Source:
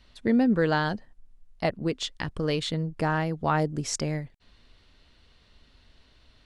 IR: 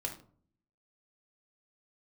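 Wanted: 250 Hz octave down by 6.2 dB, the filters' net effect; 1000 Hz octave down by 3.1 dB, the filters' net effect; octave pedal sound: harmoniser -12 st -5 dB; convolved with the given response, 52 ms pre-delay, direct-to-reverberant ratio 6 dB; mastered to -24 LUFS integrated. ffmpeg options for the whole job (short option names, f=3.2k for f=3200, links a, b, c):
-filter_complex "[0:a]equalizer=f=250:t=o:g=-8,equalizer=f=1k:t=o:g=-3.5,asplit=2[a][b];[1:a]atrim=start_sample=2205,adelay=52[c];[b][c]afir=irnorm=-1:irlink=0,volume=-7dB[d];[a][d]amix=inputs=2:normalize=0,asplit=2[e][f];[f]asetrate=22050,aresample=44100,atempo=2,volume=-5dB[g];[e][g]amix=inputs=2:normalize=0,volume=5dB"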